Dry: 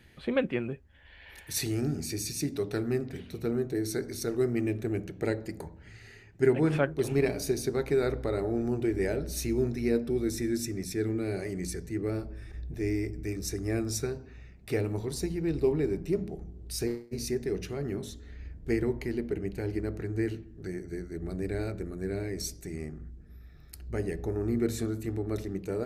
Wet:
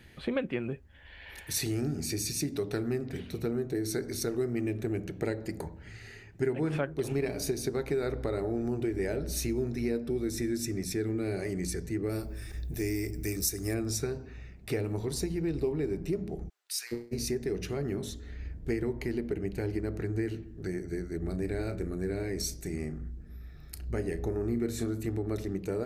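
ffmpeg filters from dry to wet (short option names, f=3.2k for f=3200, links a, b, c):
-filter_complex "[0:a]asplit=3[a][b][c];[a]afade=t=out:st=12.09:d=0.02[d];[b]aemphasis=mode=production:type=75fm,afade=t=in:st=12.09:d=0.02,afade=t=out:st=13.73:d=0.02[e];[c]afade=t=in:st=13.73:d=0.02[f];[d][e][f]amix=inputs=3:normalize=0,asplit=3[g][h][i];[g]afade=t=out:st=16.48:d=0.02[j];[h]highpass=f=1.3k:w=0.5412,highpass=f=1.3k:w=1.3066,afade=t=in:st=16.48:d=0.02,afade=t=out:st=16.91:d=0.02[k];[i]afade=t=in:st=16.91:d=0.02[l];[j][k][l]amix=inputs=3:normalize=0,asettb=1/sr,asplit=3[m][n][o];[m]atrim=end=21.214[p];[n]atrim=start=21.21:end=24.93,asetpts=PTS-STARTPTS,afade=t=in:d=0.004:c=qsin,afade=t=out:st=3.716:d=0.004:c=qsin,asplit=2[q][r];[r]adelay=34,volume=-12dB[s];[q][s]amix=inputs=2:normalize=0,atrim=end_sample=164052[t];[o]atrim=start=24.926[u];[p][t]acrossfade=d=0.004:c1=hsin:c2=qsin[v];[v][u]acrossfade=d=0.004:c1=qsin:c2=hsin,acompressor=threshold=-32dB:ratio=3,volume=3dB"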